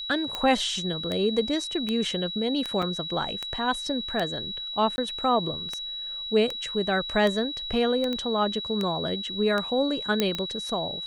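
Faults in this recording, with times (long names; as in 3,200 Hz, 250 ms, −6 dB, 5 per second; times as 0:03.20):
scratch tick 78 rpm −15 dBFS
whistle 3,900 Hz −32 dBFS
0:02.82–0:02.83: drop-out 5.2 ms
0:04.96–0:04.98: drop-out 20 ms
0:08.13: click −18 dBFS
0:10.20: click −8 dBFS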